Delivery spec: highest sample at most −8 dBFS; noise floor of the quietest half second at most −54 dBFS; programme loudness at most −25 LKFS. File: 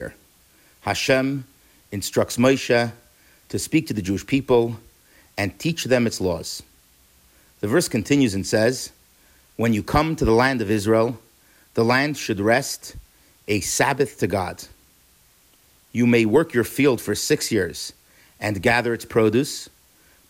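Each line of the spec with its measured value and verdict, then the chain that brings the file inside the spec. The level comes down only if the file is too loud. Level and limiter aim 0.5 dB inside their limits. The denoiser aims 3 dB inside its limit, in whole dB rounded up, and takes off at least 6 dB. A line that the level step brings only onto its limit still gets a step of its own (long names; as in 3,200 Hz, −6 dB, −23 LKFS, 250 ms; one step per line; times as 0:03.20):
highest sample −6.0 dBFS: out of spec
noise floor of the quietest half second −57 dBFS: in spec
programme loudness −21.5 LKFS: out of spec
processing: level −4 dB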